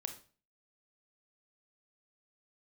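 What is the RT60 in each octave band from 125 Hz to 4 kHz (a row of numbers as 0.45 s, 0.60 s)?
0.50 s, 0.45 s, 0.40 s, 0.40 s, 0.35 s, 0.35 s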